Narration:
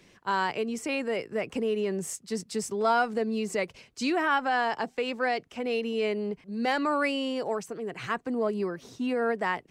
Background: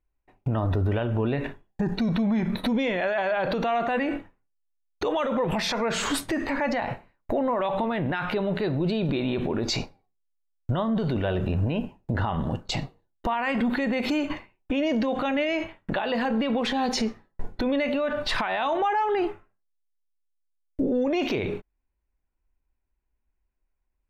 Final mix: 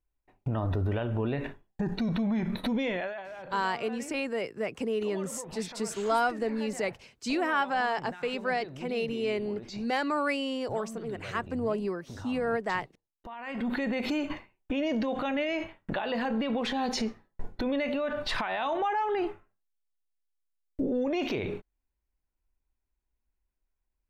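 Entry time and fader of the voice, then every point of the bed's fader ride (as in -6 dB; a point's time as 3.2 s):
3.25 s, -2.0 dB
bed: 2.96 s -4.5 dB
3.27 s -17.5 dB
13.28 s -17.5 dB
13.73 s -4.5 dB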